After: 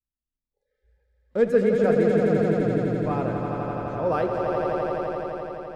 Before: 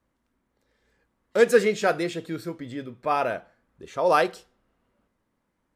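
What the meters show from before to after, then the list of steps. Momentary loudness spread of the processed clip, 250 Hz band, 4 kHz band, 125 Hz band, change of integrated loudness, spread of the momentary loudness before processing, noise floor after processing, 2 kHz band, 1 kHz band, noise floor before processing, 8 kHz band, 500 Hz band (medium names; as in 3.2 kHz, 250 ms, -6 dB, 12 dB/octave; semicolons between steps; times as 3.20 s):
10 LU, +8.0 dB, no reading, +12.5 dB, 0.0 dB, 16 LU, under -85 dBFS, -5.5 dB, -2.0 dB, -76 dBFS, under -10 dB, +2.5 dB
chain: bass shelf 130 Hz +6.5 dB; spectral noise reduction 30 dB; tilt EQ -4 dB/octave; on a send: echo with a slow build-up 85 ms, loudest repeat 5, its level -6 dB; on the sum: trim -7.5 dB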